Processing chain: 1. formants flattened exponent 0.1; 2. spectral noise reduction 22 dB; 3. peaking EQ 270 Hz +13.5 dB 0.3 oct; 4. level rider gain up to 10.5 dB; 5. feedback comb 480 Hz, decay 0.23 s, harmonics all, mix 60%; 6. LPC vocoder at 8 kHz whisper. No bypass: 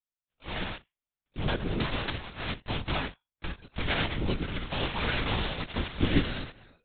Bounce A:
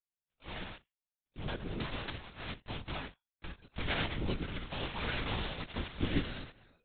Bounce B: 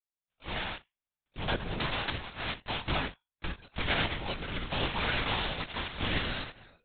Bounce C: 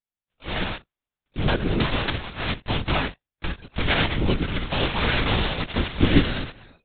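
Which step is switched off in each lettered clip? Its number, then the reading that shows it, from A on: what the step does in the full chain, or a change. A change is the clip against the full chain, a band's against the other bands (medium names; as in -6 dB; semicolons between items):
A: 4, loudness change -7.0 LU; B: 3, 250 Hz band -6.5 dB; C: 5, loudness change +7.5 LU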